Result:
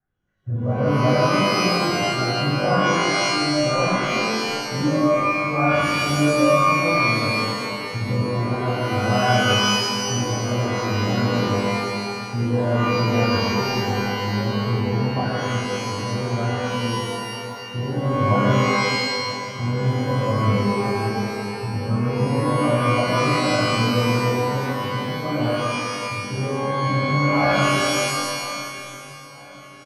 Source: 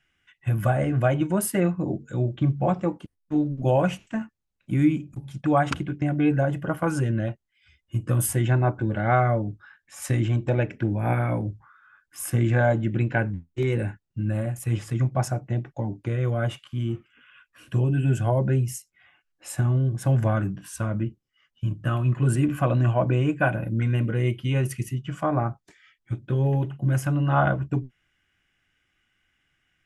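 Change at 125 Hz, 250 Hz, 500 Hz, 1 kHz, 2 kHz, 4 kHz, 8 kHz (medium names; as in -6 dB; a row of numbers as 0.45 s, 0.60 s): 0.0 dB, +4.0 dB, +6.0 dB, +9.0 dB, +10.0 dB, +20.0 dB, +6.0 dB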